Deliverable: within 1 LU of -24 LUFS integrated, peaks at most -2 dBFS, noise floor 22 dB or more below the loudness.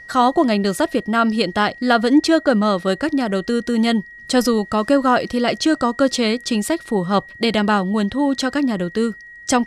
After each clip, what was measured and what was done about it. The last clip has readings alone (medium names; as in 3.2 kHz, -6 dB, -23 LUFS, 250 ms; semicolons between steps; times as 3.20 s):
steady tone 1.9 kHz; tone level -37 dBFS; loudness -18.5 LUFS; peak level -3.0 dBFS; loudness target -24.0 LUFS
-> band-stop 1.9 kHz, Q 30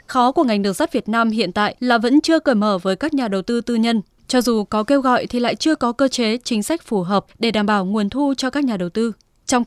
steady tone not found; loudness -18.5 LUFS; peak level -3.0 dBFS; loudness target -24.0 LUFS
-> trim -5.5 dB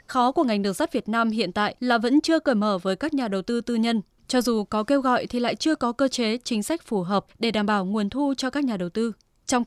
loudness -24.0 LUFS; peak level -8.5 dBFS; noise floor -62 dBFS